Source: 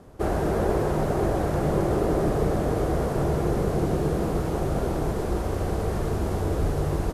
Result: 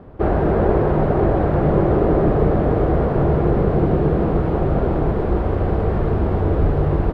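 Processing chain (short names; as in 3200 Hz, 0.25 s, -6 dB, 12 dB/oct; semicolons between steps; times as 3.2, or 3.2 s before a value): air absorption 450 m; gain +8 dB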